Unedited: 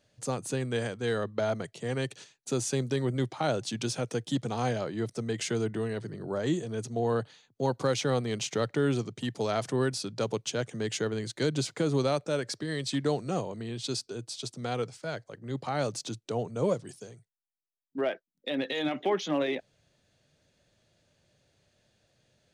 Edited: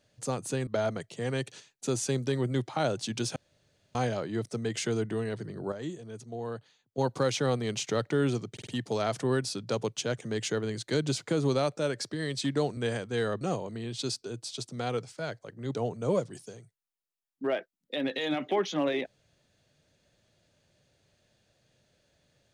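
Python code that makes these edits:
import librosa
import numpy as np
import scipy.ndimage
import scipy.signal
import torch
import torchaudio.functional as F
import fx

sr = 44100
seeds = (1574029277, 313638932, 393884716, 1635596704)

y = fx.edit(x, sr, fx.move(start_s=0.67, length_s=0.64, to_s=13.26),
    fx.room_tone_fill(start_s=4.0, length_s=0.59),
    fx.clip_gain(start_s=6.36, length_s=1.26, db=-8.5),
    fx.stutter(start_s=9.16, slice_s=0.05, count=4),
    fx.cut(start_s=15.6, length_s=0.69), tone=tone)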